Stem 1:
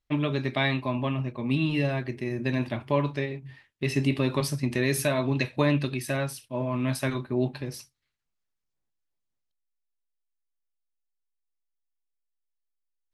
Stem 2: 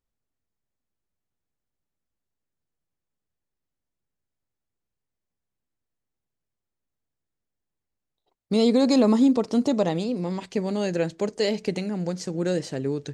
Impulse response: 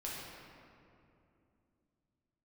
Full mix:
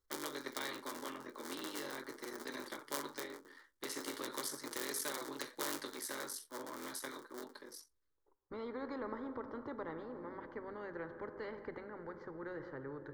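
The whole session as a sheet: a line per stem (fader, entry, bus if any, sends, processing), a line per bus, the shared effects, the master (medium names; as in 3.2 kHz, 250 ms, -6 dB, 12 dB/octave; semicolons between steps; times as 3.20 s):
+2.0 dB, 0.00 s, no send, cycle switcher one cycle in 3, muted; steep high-pass 230 Hz 36 dB/octave; flange 0.4 Hz, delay 4.3 ms, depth 8.6 ms, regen -34%; auto duck -16 dB, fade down 1.95 s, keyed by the second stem
-5.5 dB, 0.00 s, send -12 dB, low-pass 1.9 kHz 24 dB/octave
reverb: on, RT60 2.7 s, pre-delay 6 ms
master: static phaser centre 700 Hz, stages 6; spectrum-flattening compressor 2:1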